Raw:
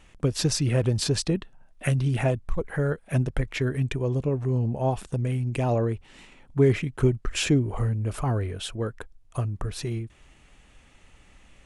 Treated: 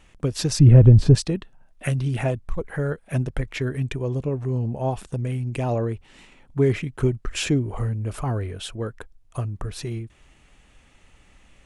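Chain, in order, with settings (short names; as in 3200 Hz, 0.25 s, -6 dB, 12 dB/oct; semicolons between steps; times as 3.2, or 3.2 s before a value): 0.59–1.15 tilt -4.5 dB/oct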